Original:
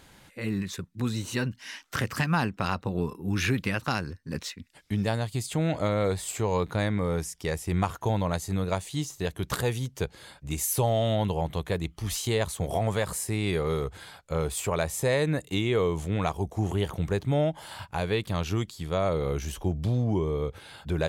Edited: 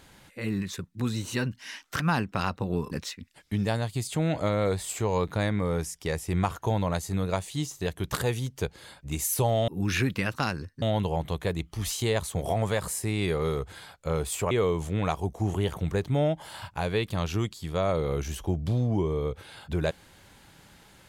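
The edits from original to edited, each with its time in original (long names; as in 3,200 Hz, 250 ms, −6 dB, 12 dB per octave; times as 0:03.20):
0:02.00–0:02.25: remove
0:03.16–0:04.30: move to 0:11.07
0:14.76–0:15.68: remove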